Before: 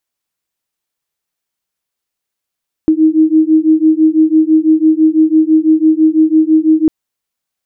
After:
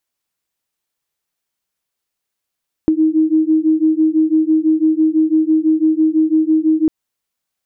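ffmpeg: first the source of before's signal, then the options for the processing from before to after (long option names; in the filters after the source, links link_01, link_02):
-f lavfi -i "aevalsrc='0.335*(sin(2*PI*312*t)+sin(2*PI*318*t))':duration=4:sample_rate=44100"
-af "acompressor=threshold=-11dB:ratio=6"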